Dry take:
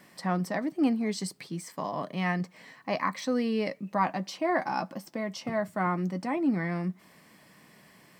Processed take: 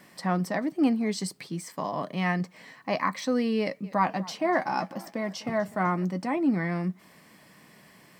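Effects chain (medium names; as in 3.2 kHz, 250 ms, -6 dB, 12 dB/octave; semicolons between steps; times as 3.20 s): 3.59–6.05 s: modulated delay 250 ms, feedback 58%, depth 127 cents, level -20.5 dB; trim +2 dB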